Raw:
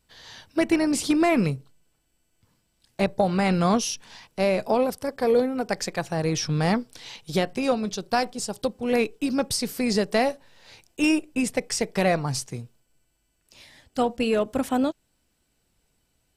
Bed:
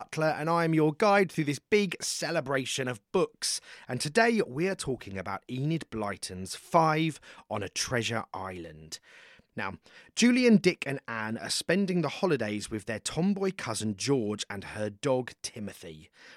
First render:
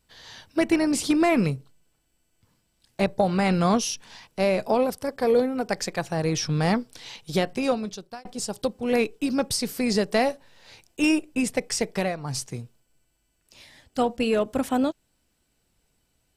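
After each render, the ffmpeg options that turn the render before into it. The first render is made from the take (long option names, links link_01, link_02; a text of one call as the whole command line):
ffmpeg -i in.wav -filter_complex "[0:a]asplit=3[link_01][link_02][link_03];[link_01]atrim=end=8.25,asetpts=PTS-STARTPTS,afade=type=out:start_time=7.66:duration=0.59[link_04];[link_02]atrim=start=8.25:end=12.16,asetpts=PTS-STARTPTS,afade=type=in:duration=0.004:curve=hsin,afade=type=out:start_time=3.66:duration=0.25:silence=0.281838[link_05];[link_03]atrim=start=12.16,asetpts=PTS-STARTPTS,afade=type=in:duration=0.25:silence=0.281838[link_06];[link_04][link_05][link_06]concat=n=3:v=0:a=1" out.wav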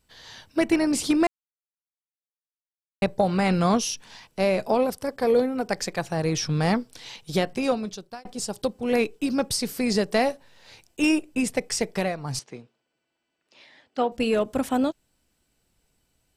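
ffmpeg -i in.wav -filter_complex "[0:a]asettb=1/sr,asplit=3[link_01][link_02][link_03];[link_01]atrim=end=12.394[link_04];[link_02]atrim=start=12.39:end=14.12,asetpts=PTS-STARTPTS,afade=type=in:duration=0.004:curve=qsin,afade=type=out:start_time=1.726:duration=0.004:curve=qsin,highpass=270,lowpass=3600[link_05];[link_03]atrim=start=14.116[link_06];[link_04][link_05]acrossfade=duration=0.004:curve1=hsin:curve2=qsin[link_07];[link_07][link_06]acrossfade=duration=0.004:curve1=qsin:curve2=hsin,asplit=3[link_08][link_09][link_10];[link_08]atrim=end=1.27,asetpts=PTS-STARTPTS,afade=type=out:start_time=1.266:duration=0.004:curve=hsin[link_11];[link_09]atrim=start=1.27:end=3.02,asetpts=PTS-STARTPTS,volume=0[link_12];[link_10]atrim=start=3.02,asetpts=PTS-STARTPTS,afade=type=in:duration=0.004:curve=hsin[link_13];[link_11][link_12][link_13]concat=n=3:v=0:a=1" out.wav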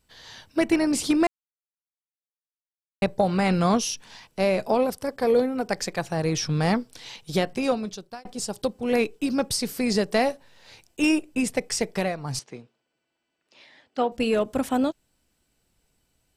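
ffmpeg -i in.wav -af anull out.wav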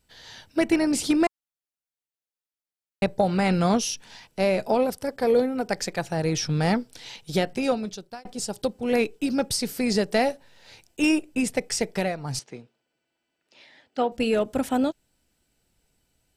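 ffmpeg -i in.wav -af "bandreject=frequency=1100:width=8.6" out.wav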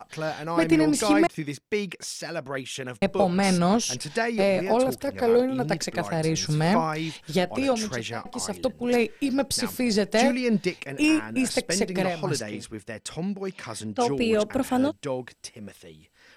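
ffmpeg -i in.wav -i bed.wav -filter_complex "[1:a]volume=-2.5dB[link_01];[0:a][link_01]amix=inputs=2:normalize=0" out.wav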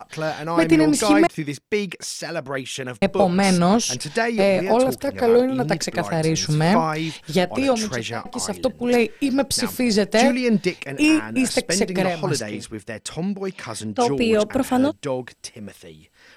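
ffmpeg -i in.wav -af "volume=4.5dB" out.wav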